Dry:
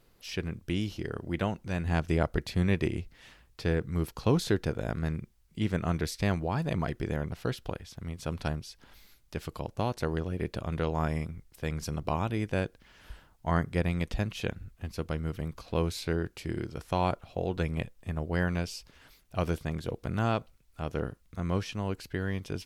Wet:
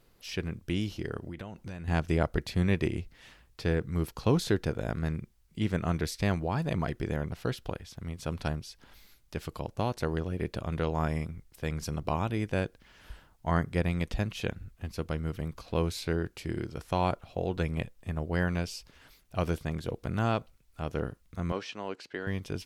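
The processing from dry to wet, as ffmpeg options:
-filter_complex "[0:a]asettb=1/sr,asplit=3[s0][s1][s2];[s0]atrim=end=1.194[s3];[s1]atrim=start=1.19:end=1.88,asetpts=PTS-STARTPTS,afade=t=in:d=0.004:c=qsin,afade=t=out:st=0.686:d=0.004:c=qsin,acompressor=threshold=0.0178:ratio=16:attack=3.2:release=140:knee=1:detection=peak[s4];[s2]atrim=start=1.876[s5];[s3][s4]acrossfade=d=0.004:c1=hsin:c2=qsin[s6];[s6][s5]acrossfade=d=0.004:c1=qsin:c2=hsin,asettb=1/sr,asplit=3[s7][s8][s9];[s7]atrim=end=21.524[s10];[s8]atrim=start=21.52:end=22.27,asetpts=PTS-STARTPTS,afade=t=in:d=0.004:c=qsin,afade=t=out:st=0.746:d=0.004:c=qsin,highpass=330,lowpass=5700[s11];[s9]atrim=start=22.266[s12];[s10][s11]acrossfade=d=0.004:c1=hsin:c2=qsin[s13];[s13][s12]acrossfade=d=0.004:c1=qsin:c2=hsin"

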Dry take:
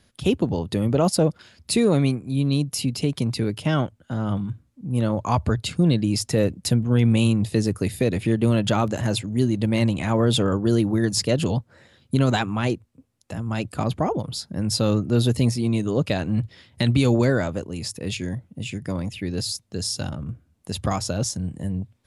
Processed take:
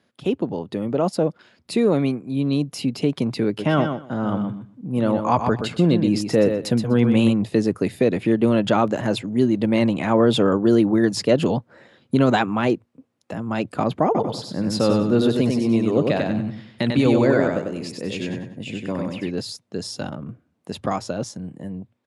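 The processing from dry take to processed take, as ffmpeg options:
-filter_complex "[0:a]asplit=3[s0][s1][s2];[s0]afade=t=out:st=3.58:d=0.02[s3];[s1]aecho=1:1:124|248|372:0.447|0.0715|0.0114,afade=t=in:st=3.58:d=0.02,afade=t=out:st=7.32:d=0.02[s4];[s2]afade=t=in:st=7.32:d=0.02[s5];[s3][s4][s5]amix=inputs=3:normalize=0,asettb=1/sr,asplit=3[s6][s7][s8];[s6]atrim=end=14.054[s9];[s7]atrim=start=14.05:end=19.31,asetpts=PTS-STARTPTS,afade=t=in:d=0.004:c=qsin,afade=t=out:st=5.256:d=0.004:c=qsin,aecho=1:1:96|192|288|384:0.668|0.227|0.0773|0.0263,atrim=end_sample=231966[s10];[s8]atrim=start=19.306[s11];[s9][s10]acrossfade=d=0.004:c1=hsin:c2=qsin[s12];[s12][s11]acrossfade=d=0.004:c1=qsin:c2=hsin,lowpass=f=1800:p=1,dynaudnorm=f=420:g=11:m=2.51,highpass=210"

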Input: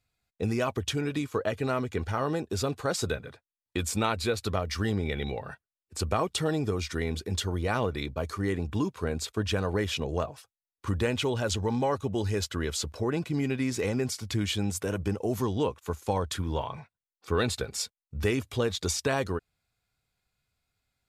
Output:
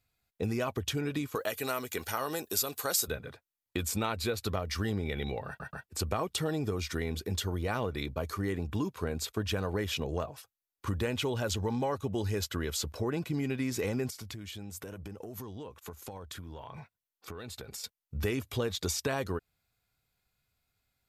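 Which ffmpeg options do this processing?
-filter_complex "[0:a]asettb=1/sr,asplit=3[s0][s1][s2];[s0]atrim=end=1.354[s3];[s1]atrim=start=1.35:end=3.08,asetpts=PTS-STARTPTS,afade=t=in:d=0.004:c=qsin,afade=t=out:st=1.726:d=0.004:c=qsin,aemphasis=mode=production:type=riaa[s4];[s2]atrim=start=3.076[s5];[s3][s4]acrossfade=d=0.004:c1=hsin:c2=qsin[s6];[s6][s5]acrossfade=d=0.004:c1=qsin:c2=hsin,asettb=1/sr,asplit=3[s7][s8][s9];[s7]atrim=end=14.104[s10];[s8]atrim=start=14.1:end=17.84,asetpts=PTS-STARTPTS,afade=t=in:d=0.004:c=qsin,afade=t=out:st=3.736:d=0.004:c=qsin,acompressor=threshold=0.0112:ratio=12:attack=3.2:release=140:knee=1:detection=peak[s11];[s9]atrim=start=17.836[s12];[s10][s11]acrossfade=d=0.004:c1=hsin:c2=qsin[s13];[s13][s12]acrossfade=d=0.004:c1=qsin:c2=hsin,asplit=4[s14][s15][s16][s17];[s14]atrim=end=5.602[s18];[s15]atrim=start=5.468:end=5.602[s19];[s16]atrim=start=5.468:end=5.602[s20];[s17]atrim=start=5.858[s21];[s18][s19]acrossfade=d=0.004:c1=hsin:c2=hsin[s22];[s22][s20]acrossfade=d=0.004:c1=hsin:c2=hsin[s23];[s23][s21]acrossfade=d=0.004:c1=hsin:c2=hsin,equalizer=f=12000:w=7.2:g=13.5,acompressor=threshold=0.0282:ratio=2"

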